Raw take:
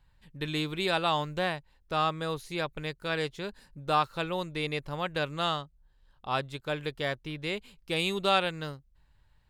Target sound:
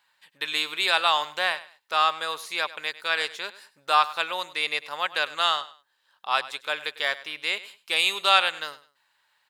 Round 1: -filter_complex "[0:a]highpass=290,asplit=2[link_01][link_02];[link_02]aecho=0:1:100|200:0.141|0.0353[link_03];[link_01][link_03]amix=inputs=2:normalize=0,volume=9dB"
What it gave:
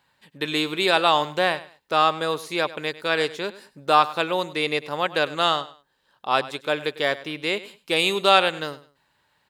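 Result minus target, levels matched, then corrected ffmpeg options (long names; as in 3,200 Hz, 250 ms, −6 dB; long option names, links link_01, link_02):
250 Hz band +15.5 dB
-filter_complex "[0:a]highpass=1000,asplit=2[link_01][link_02];[link_02]aecho=0:1:100|200:0.141|0.0353[link_03];[link_01][link_03]amix=inputs=2:normalize=0,volume=9dB"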